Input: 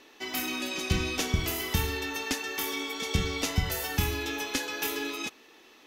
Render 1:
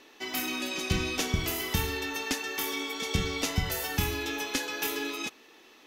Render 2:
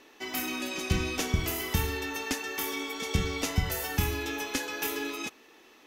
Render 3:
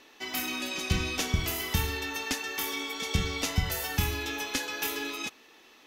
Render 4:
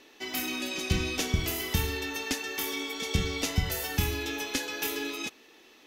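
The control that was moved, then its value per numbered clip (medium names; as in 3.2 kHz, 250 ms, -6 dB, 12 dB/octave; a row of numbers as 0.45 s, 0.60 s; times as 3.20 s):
peaking EQ, frequency: 65 Hz, 3.9 kHz, 360 Hz, 1.1 kHz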